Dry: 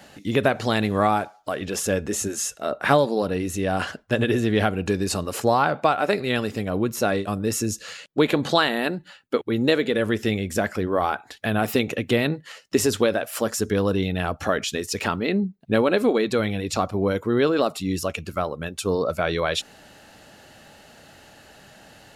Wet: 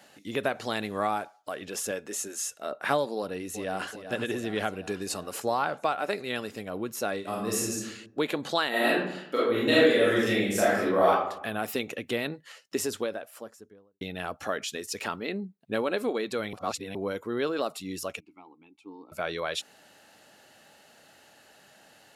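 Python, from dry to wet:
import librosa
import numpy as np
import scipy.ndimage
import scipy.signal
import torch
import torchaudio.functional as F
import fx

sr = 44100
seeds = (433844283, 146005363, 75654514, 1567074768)

y = fx.highpass(x, sr, hz=300.0, slope=6, at=(1.91, 2.44))
y = fx.echo_throw(y, sr, start_s=3.16, length_s=0.72, ms=380, feedback_pct=70, wet_db=-10.5)
y = fx.reverb_throw(y, sr, start_s=7.2, length_s=0.6, rt60_s=0.93, drr_db=-3.5)
y = fx.reverb_throw(y, sr, start_s=8.69, length_s=2.4, rt60_s=0.81, drr_db=-8.5)
y = fx.studio_fade_out(y, sr, start_s=12.63, length_s=1.38)
y = fx.vowel_filter(y, sr, vowel='u', at=(18.2, 19.12))
y = fx.edit(y, sr, fx.reverse_span(start_s=16.53, length_s=0.42), tone=tone)
y = fx.highpass(y, sr, hz=310.0, slope=6)
y = fx.peak_eq(y, sr, hz=11000.0, db=3.0, octaves=0.97)
y = y * librosa.db_to_amplitude(-7.0)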